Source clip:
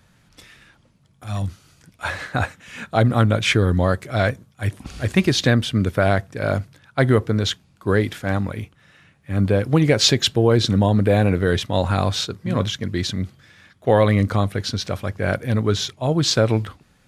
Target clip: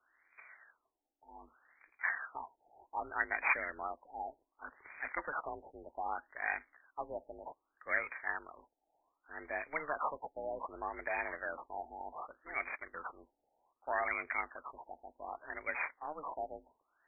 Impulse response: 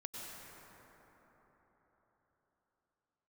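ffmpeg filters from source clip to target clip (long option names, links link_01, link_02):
-af "acrusher=samples=14:mix=1:aa=0.000001,lowpass=frequency=2800:width_type=q:width=0.5098,lowpass=frequency=2800:width_type=q:width=0.6013,lowpass=frequency=2800:width_type=q:width=0.9,lowpass=frequency=2800:width_type=q:width=2.563,afreqshift=-3300,afftfilt=real='re*lt(b*sr/1024,880*pow(2500/880,0.5+0.5*sin(2*PI*0.65*pts/sr)))':imag='im*lt(b*sr/1024,880*pow(2500/880,0.5+0.5*sin(2*PI*0.65*pts/sr)))':win_size=1024:overlap=0.75,volume=-5.5dB"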